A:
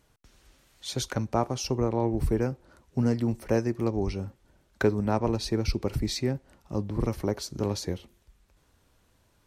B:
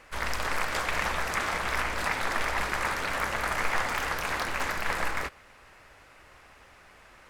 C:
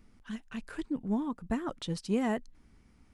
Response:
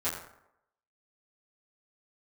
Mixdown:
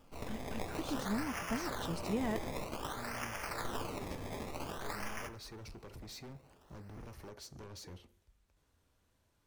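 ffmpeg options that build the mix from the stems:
-filter_complex "[0:a]acompressor=threshold=-27dB:ratio=6,asoftclip=type=hard:threshold=-36.5dB,volume=-10.5dB,asplit=2[a][b];[b]volume=-20dB[c];[1:a]acrusher=samples=21:mix=1:aa=0.000001:lfo=1:lforange=21:lforate=0.53,acontrast=38,volume=-18.5dB,asplit=2[d][e];[e]volume=-15.5dB[f];[2:a]volume=-6dB[g];[3:a]atrim=start_sample=2205[h];[c][f]amix=inputs=2:normalize=0[i];[i][h]afir=irnorm=-1:irlink=0[j];[a][d][g][j]amix=inputs=4:normalize=0"

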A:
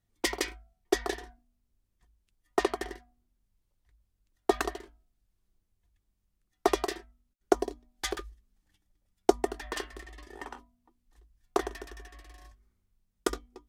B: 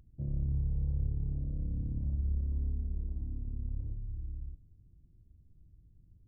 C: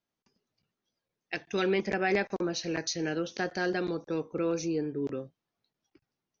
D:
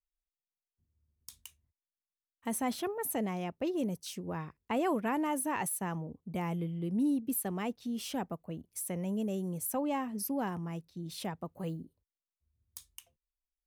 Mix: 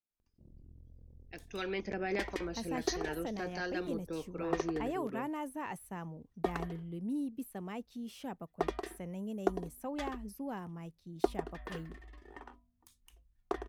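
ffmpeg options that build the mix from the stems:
-filter_complex "[0:a]bass=f=250:g=5,treble=f=4k:g=-12,adelay=1950,volume=-8.5dB[a];[1:a]equalizer=f=125:t=o:w=1:g=-10,equalizer=f=250:t=o:w=1:g=8,equalizer=f=500:t=o:w=1:g=5,asoftclip=type=tanh:threshold=-31.5dB,tremolo=f=43:d=0.947,adelay=200,volume=-15dB[b];[2:a]acrossover=split=600[c][d];[c]aeval=exprs='val(0)*(1-0.5/2+0.5/2*cos(2*PI*1.5*n/s))':c=same[e];[d]aeval=exprs='val(0)*(1-0.5/2-0.5/2*cos(2*PI*1.5*n/s))':c=same[f];[e][f]amix=inputs=2:normalize=0,volume=-5.5dB,afade=t=in:st=1.11:d=0.67:silence=0.375837[g];[3:a]acrossover=split=2800[h][i];[i]acompressor=threshold=-46dB:ratio=4:attack=1:release=60[j];[h][j]amix=inputs=2:normalize=0,adelay=100,volume=-6.5dB[k];[a][b][g][k]amix=inputs=4:normalize=0"

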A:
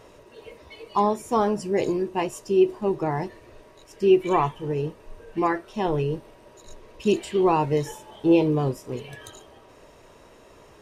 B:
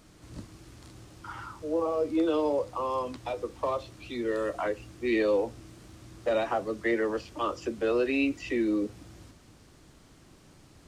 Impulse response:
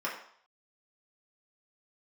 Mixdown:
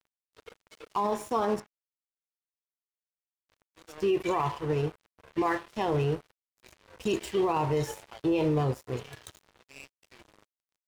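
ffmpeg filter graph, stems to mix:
-filter_complex "[0:a]asubboost=boost=6:cutoff=82,volume=1dB,asplit=3[a][b][c];[a]atrim=end=1.6,asetpts=PTS-STARTPTS,afade=t=out:st=1.596:d=0.004:c=hsin[d];[b]atrim=start=1.6:end=3.49,asetpts=PTS-STARTPTS,volume=0[e];[c]atrim=start=3.49,asetpts=PTS-STARTPTS,afade=t=in:d=0.004:c=hsin[f];[d][e][f]concat=n=3:v=0:a=1,asplit=3[g][h][i];[h]volume=-15dB[j];[1:a]equalizer=f=100:t=o:w=0.67:g=-7,equalizer=f=250:t=o:w=0.67:g=-11,equalizer=f=1k:t=o:w=0.67:g=3,equalizer=f=2.5k:t=o:w=0.67:g=8,adelay=1600,volume=-1.5dB,afade=t=in:st=3.55:d=0.43:silence=0.266073,afade=t=out:st=8.03:d=0.48:silence=0.334965,afade=t=in:st=9.58:d=0.38:silence=0.421697[k];[i]apad=whole_len=550122[l];[k][l]sidechaincompress=threshold=-44dB:ratio=3:attack=16:release=198[m];[2:a]atrim=start_sample=2205[n];[j][n]afir=irnorm=-1:irlink=0[o];[g][m][o]amix=inputs=3:normalize=0,highpass=f=63:w=0.5412,highpass=f=63:w=1.3066,aeval=exprs='sgn(val(0))*max(abs(val(0))-0.0112,0)':c=same,alimiter=limit=-19dB:level=0:latency=1:release=20"

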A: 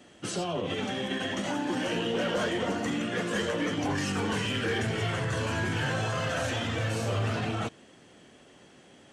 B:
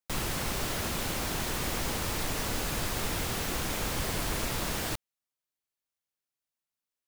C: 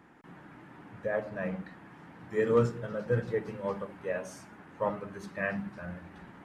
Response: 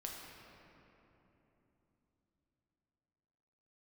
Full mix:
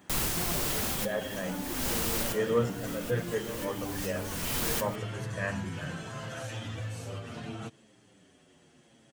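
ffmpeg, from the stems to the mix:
-filter_complex "[0:a]equalizer=f=130:w=0.6:g=5.5,acompressor=threshold=-28dB:ratio=2.5,asplit=2[a][b];[b]adelay=7.6,afreqshift=-0.73[c];[a][c]amix=inputs=2:normalize=1,volume=-5.5dB[d];[1:a]volume=0dB[e];[2:a]volume=-2dB,asplit=2[f][g];[g]apad=whole_len=312108[h];[e][h]sidechaincompress=threshold=-48dB:ratio=8:attack=5.4:release=316[i];[d][i][f]amix=inputs=3:normalize=0,crystalizer=i=1:c=0"

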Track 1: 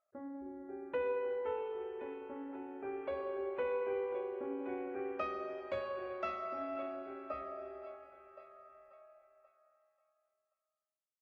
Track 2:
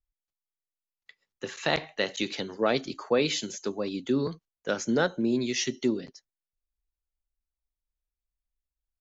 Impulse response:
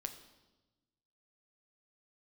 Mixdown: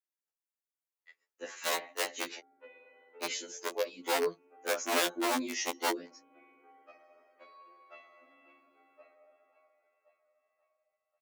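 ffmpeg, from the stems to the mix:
-filter_complex "[0:a]adelay=1700,volume=-9.5dB[a];[1:a]equalizer=f=3.7k:t=o:w=0.88:g=-10,aeval=exprs='(mod(10*val(0)+1,2)-1)/10':c=same,volume=0.5dB,asplit=3[b][c][d];[b]atrim=end=2.39,asetpts=PTS-STARTPTS,afade=t=out:st=2.386:d=0.004:c=hsin[e];[c]atrim=start=2.39:end=3.23,asetpts=PTS-STARTPTS,volume=0[f];[d]atrim=start=3.23,asetpts=PTS-STARTPTS,afade=t=in:d=0.004:c=hsin[g];[e][f][g]concat=n=3:v=0:a=1,asplit=2[h][i];[i]apad=whole_len=569562[j];[a][j]sidechaincompress=threshold=-40dB:ratio=8:attack=16:release=123[k];[k][h]amix=inputs=2:normalize=0,highpass=f=310:w=0.5412,highpass=f=310:w=1.3066,afftfilt=real='re*2*eq(mod(b,4),0)':imag='im*2*eq(mod(b,4),0)':win_size=2048:overlap=0.75"

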